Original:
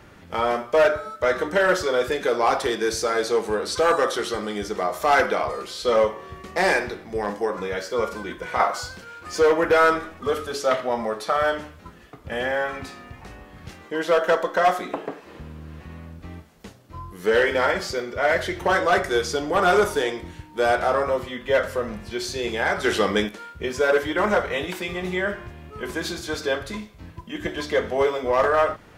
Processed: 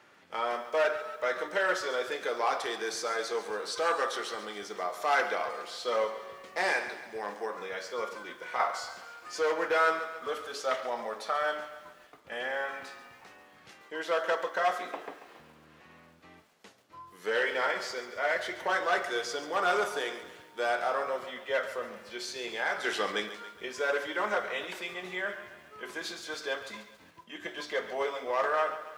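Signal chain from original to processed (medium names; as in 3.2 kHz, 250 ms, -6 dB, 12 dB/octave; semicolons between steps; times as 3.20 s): frequency weighting A; bit-crushed delay 139 ms, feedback 55%, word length 8-bit, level -12.5 dB; trim -8 dB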